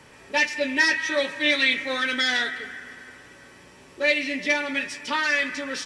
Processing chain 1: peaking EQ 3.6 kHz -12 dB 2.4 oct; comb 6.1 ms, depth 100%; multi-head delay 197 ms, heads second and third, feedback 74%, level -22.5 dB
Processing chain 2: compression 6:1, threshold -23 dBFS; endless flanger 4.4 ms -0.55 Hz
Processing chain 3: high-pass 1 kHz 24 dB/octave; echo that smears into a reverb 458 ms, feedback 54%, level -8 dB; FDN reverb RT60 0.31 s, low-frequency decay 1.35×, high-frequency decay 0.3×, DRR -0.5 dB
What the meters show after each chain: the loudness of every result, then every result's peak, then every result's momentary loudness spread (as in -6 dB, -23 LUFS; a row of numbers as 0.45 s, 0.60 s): -28.0 LUFS, -30.0 LUFS, -20.5 LUFS; -13.5 dBFS, -16.0 dBFS, -4.5 dBFS; 19 LU, 12 LU, 13 LU